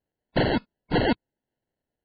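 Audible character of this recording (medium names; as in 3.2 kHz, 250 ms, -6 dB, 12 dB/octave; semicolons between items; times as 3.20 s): phasing stages 4, 1 Hz, lowest notch 550–1300 Hz; aliases and images of a low sample rate 1.2 kHz, jitter 0%; MP3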